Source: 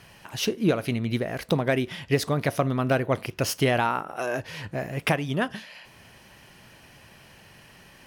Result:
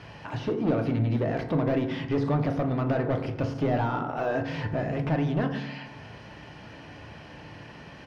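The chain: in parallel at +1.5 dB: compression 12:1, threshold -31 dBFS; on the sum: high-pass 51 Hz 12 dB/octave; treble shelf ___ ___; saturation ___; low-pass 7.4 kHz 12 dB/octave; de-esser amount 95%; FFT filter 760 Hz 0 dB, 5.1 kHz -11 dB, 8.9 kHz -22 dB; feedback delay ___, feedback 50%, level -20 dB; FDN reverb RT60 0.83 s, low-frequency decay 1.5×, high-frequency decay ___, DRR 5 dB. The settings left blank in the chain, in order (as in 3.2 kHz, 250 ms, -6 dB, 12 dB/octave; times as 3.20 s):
2.7 kHz, +5 dB, -22 dBFS, 87 ms, 0.3×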